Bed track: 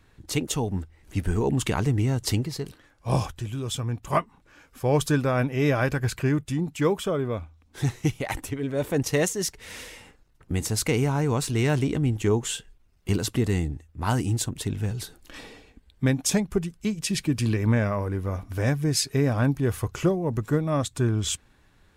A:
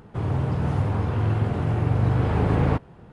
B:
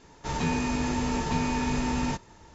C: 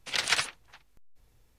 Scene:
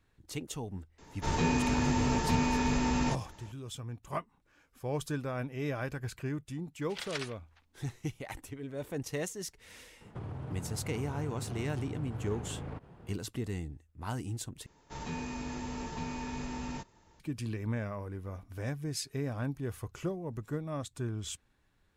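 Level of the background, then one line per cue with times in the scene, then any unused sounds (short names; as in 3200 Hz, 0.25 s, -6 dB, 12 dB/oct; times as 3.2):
bed track -12.5 dB
0.98 add B -1.5 dB
6.83 add C -12.5 dB + high shelf 8300 Hz -6.5 dB
10.01 add A -6.5 dB + compressor 12:1, threshold -30 dBFS
14.66 replace with B -11 dB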